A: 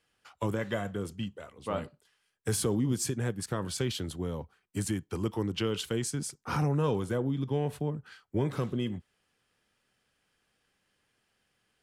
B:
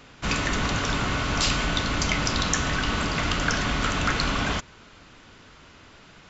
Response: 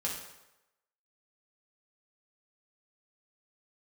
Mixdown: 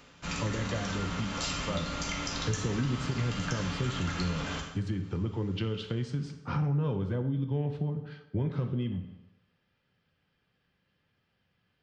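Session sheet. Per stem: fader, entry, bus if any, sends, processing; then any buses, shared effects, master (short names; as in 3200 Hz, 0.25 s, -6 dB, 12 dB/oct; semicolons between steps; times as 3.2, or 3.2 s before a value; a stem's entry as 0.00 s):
-5.5 dB, 0.00 s, send -5.5 dB, LPF 4600 Hz 24 dB/oct; bell 110 Hz +10.5 dB 1.9 oct
-10.0 dB, 0.00 s, send -3.5 dB, high shelf 6400 Hz +5.5 dB; auto duck -11 dB, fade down 0.25 s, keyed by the first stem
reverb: on, RT60 0.95 s, pre-delay 3 ms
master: compressor 2:1, threshold -31 dBFS, peak gain reduction 7.5 dB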